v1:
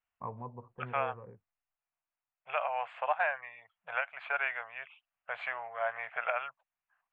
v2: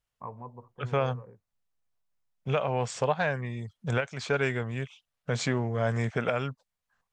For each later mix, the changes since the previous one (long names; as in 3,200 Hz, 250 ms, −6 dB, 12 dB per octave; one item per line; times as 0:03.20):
second voice: remove elliptic band-pass filter 670–2,700 Hz, stop band 40 dB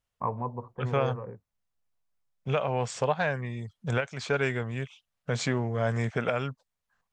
first voice +10.0 dB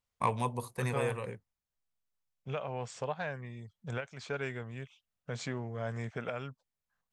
first voice: remove low-pass filter 1,300 Hz 24 dB per octave
second voice −9.5 dB